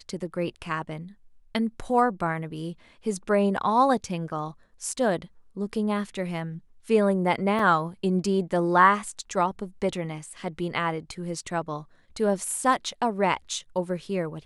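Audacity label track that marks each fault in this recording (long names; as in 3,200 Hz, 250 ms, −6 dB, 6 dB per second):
7.590000	7.590000	drop-out 3.7 ms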